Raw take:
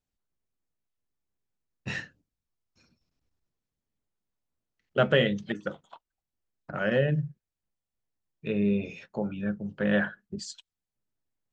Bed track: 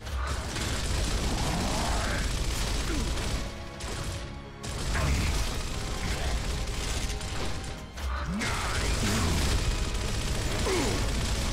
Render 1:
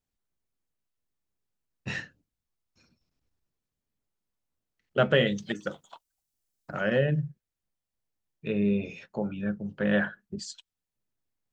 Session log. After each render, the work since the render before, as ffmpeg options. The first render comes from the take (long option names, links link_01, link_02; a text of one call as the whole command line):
ffmpeg -i in.wav -filter_complex "[0:a]asettb=1/sr,asplit=3[link_01][link_02][link_03];[link_01]atrim=end=5.274[link_04];[link_02]atrim=start=5.27:end=6.81,asetpts=PTS-STARTPTS,afade=type=in:duration=0.004:curve=qsin,afade=type=out:start_time=1.536:duration=0.004:curve=qsin,bass=frequency=250:gain=-1,treble=frequency=4000:gain=12[link_05];[link_03]atrim=start=6.806[link_06];[link_04][link_05]acrossfade=duration=0.004:curve1=hsin:curve2=qsin[link_07];[link_07][link_06]acrossfade=duration=0.004:curve1=qsin:curve2=hsin" out.wav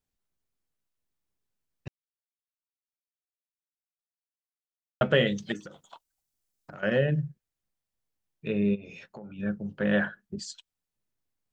ffmpeg -i in.wav -filter_complex "[0:a]asettb=1/sr,asplit=3[link_01][link_02][link_03];[link_01]atrim=end=5.574[link_04];[link_02]atrim=start=5.57:end=6.83,asetpts=PTS-STARTPTS,afade=type=in:duration=0.004:curve=qsin,afade=type=out:start_time=1.256:duration=0.004:curve=qsin,acompressor=threshold=-39dB:ratio=12:attack=3.2:release=140:knee=1:detection=peak[link_05];[link_03]atrim=start=6.826[link_06];[link_04][link_05]acrossfade=duration=0.004:curve1=hsin:curve2=qsin[link_07];[link_07][link_06]acrossfade=duration=0.004:curve1=qsin:curve2=hsin,asplit=3[link_08][link_09][link_10];[link_08]afade=type=out:start_time=8.74:duration=0.02[link_11];[link_09]acompressor=threshold=-41dB:ratio=5:attack=3.2:release=140:knee=1:detection=peak,afade=type=in:start_time=8.74:duration=0.02,afade=type=out:start_time=9.38:duration=0.02[link_12];[link_10]afade=type=in:start_time=9.38:duration=0.02[link_13];[link_11][link_12][link_13]amix=inputs=3:normalize=0,asplit=3[link_14][link_15][link_16];[link_14]atrim=end=1.88,asetpts=PTS-STARTPTS,afade=type=out:start_time=1.876:duration=0.004:curve=hsin[link_17];[link_15]atrim=start=1.88:end=5.01,asetpts=PTS-STARTPTS,volume=0[link_18];[link_16]atrim=start=5.01,asetpts=PTS-STARTPTS,afade=type=in:duration=0.004:curve=hsin[link_19];[link_17][link_18][link_19]concat=n=3:v=0:a=1" out.wav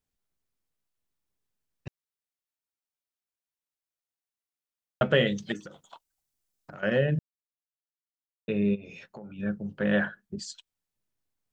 ffmpeg -i in.wav -filter_complex "[0:a]asplit=3[link_01][link_02][link_03];[link_01]atrim=end=7.19,asetpts=PTS-STARTPTS,afade=type=out:start_time=7.186:duration=0.004:curve=hsin[link_04];[link_02]atrim=start=7.19:end=8.48,asetpts=PTS-STARTPTS,volume=0[link_05];[link_03]atrim=start=8.48,asetpts=PTS-STARTPTS,afade=type=in:duration=0.004:curve=hsin[link_06];[link_04][link_05][link_06]concat=n=3:v=0:a=1" out.wav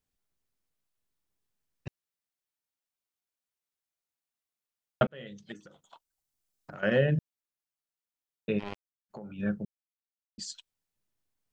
ffmpeg -i in.wav -filter_complex "[0:a]asplit=3[link_01][link_02][link_03];[link_01]afade=type=out:start_time=8.58:duration=0.02[link_04];[link_02]acrusher=bits=2:mix=0:aa=0.5,afade=type=in:start_time=8.58:duration=0.02,afade=type=out:start_time=9.09:duration=0.02[link_05];[link_03]afade=type=in:start_time=9.09:duration=0.02[link_06];[link_04][link_05][link_06]amix=inputs=3:normalize=0,asplit=4[link_07][link_08][link_09][link_10];[link_07]atrim=end=5.07,asetpts=PTS-STARTPTS,afade=type=out:start_time=5.066:duration=0.004:curve=hsin[link_11];[link_08]atrim=start=5.07:end=9.65,asetpts=PTS-STARTPTS,afade=type=in:duration=1.64,afade=type=out:start_time=4.576:duration=0.004:curve=hsin[link_12];[link_09]atrim=start=9.65:end=10.38,asetpts=PTS-STARTPTS,volume=0[link_13];[link_10]atrim=start=10.38,asetpts=PTS-STARTPTS,afade=type=in:duration=0.004:curve=hsin[link_14];[link_11][link_12][link_13][link_14]concat=n=4:v=0:a=1" out.wav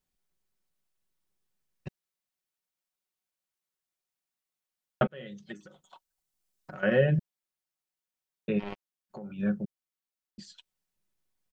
ffmpeg -i in.wav -filter_complex "[0:a]acrossover=split=3300[link_01][link_02];[link_02]acompressor=threshold=-57dB:ratio=4:attack=1:release=60[link_03];[link_01][link_03]amix=inputs=2:normalize=0,aecho=1:1:5.4:0.43" out.wav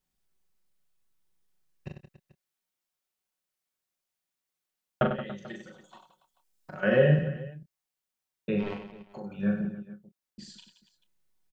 ffmpeg -i in.wav -filter_complex "[0:a]asplit=2[link_01][link_02];[link_02]adelay=28,volume=-13dB[link_03];[link_01][link_03]amix=inputs=2:normalize=0,aecho=1:1:40|96|174.4|284.2|437.8:0.631|0.398|0.251|0.158|0.1" out.wav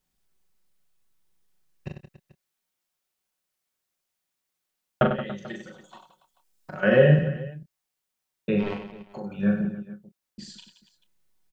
ffmpeg -i in.wav -af "volume=4.5dB" out.wav